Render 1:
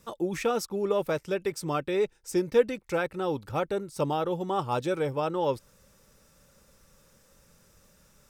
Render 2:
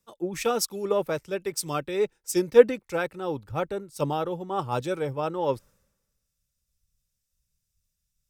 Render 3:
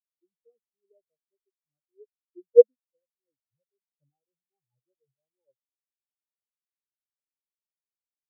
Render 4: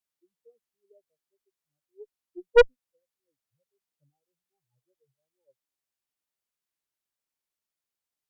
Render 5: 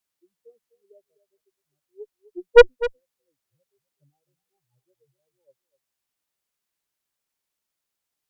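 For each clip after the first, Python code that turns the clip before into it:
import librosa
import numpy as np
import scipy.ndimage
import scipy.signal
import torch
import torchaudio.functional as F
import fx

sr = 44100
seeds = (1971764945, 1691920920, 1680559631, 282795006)

y1 = fx.high_shelf(x, sr, hz=10000.0, db=4.0)
y1 = fx.band_widen(y1, sr, depth_pct=100)
y2 = fx.low_shelf(y1, sr, hz=430.0, db=8.0)
y2 = fx.spectral_expand(y2, sr, expansion=4.0)
y2 = y2 * 10.0 ** (-3.0 / 20.0)
y3 = fx.tube_stage(y2, sr, drive_db=18.0, bias=0.55)
y3 = y3 * 10.0 ** (8.0 / 20.0)
y4 = y3 + 10.0 ** (-15.5 / 20.0) * np.pad(y3, (int(253 * sr / 1000.0), 0))[:len(y3)]
y4 = y4 * 10.0 ** (6.0 / 20.0)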